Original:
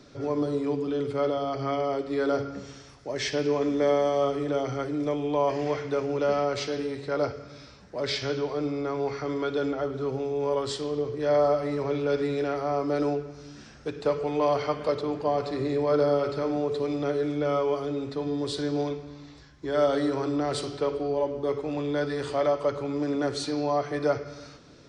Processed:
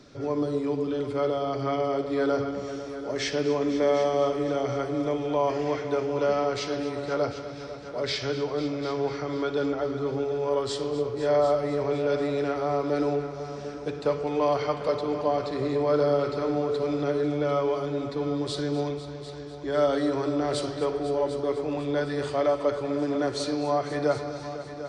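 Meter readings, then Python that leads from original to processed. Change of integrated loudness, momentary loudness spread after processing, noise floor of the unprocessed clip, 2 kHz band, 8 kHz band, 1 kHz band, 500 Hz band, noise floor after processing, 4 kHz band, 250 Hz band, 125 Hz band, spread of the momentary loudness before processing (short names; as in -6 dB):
+0.5 dB, 7 LU, -50 dBFS, +0.5 dB, +0.5 dB, +0.5 dB, +0.5 dB, -38 dBFS, +0.5 dB, +0.5 dB, +1.0 dB, 7 LU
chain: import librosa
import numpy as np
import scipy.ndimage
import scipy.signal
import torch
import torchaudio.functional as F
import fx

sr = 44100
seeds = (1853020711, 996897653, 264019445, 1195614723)

y = fx.echo_heads(x, sr, ms=249, heads='all three', feedback_pct=47, wet_db=-15.5)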